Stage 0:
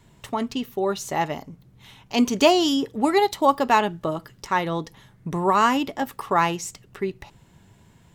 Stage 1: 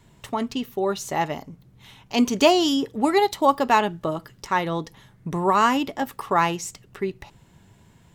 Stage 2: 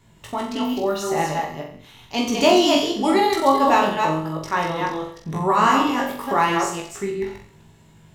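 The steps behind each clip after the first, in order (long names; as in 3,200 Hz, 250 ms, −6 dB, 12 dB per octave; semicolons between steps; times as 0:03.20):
no processing that can be heard
delay that plays each chunk backwards 162 ms, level −3.5 dB; on a send: flutter between parallel walls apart 7.6 metres, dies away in 0.54 s; on the sum: chorus effect 0.9 Hz, delay 18 ms, depth 2.4 ms; level +2.5 dB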